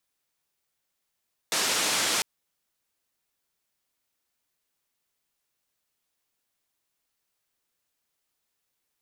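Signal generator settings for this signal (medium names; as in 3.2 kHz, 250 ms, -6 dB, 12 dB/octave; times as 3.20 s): noise band 200–7700 Hz, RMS -26 dBFS 0.70 s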